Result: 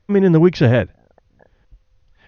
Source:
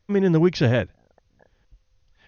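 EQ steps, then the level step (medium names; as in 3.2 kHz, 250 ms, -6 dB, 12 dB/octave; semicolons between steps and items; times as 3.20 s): low-pass 2.6 kHz 6 dB/octave; +6.0 dB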